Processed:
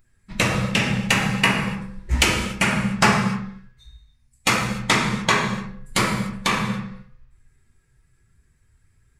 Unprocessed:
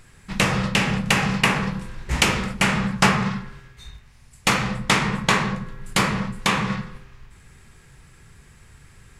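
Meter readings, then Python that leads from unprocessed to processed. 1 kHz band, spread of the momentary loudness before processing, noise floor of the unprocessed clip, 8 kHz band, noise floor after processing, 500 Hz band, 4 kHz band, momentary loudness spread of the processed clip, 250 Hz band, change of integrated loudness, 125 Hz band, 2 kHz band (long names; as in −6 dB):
0.0 dB, 12 LU, −51 dBFS, +1.0 dB, −62 dBFS, +0.5 dB, +0.5 dB, 12 LU, 0.0 dB, +0.5 dB, 0.0 dB, +0.5 dB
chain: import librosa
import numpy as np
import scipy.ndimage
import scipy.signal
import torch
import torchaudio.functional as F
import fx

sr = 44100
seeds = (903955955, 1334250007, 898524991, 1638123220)

y = fx.bin_expand(x, sr, power=1.5)
y = fx.rev_gated(y, sr, seeds[0], gate_ms=320, shape='falling', drr_db=3.0)
y = np.clip(10.0 ** (7.5 / 20.0) * y, -1.0, 1.0) / 10.0 ** (7.5 / 20.0)
y = F.gain(torch.from_numpy(y), 2.0).numpy()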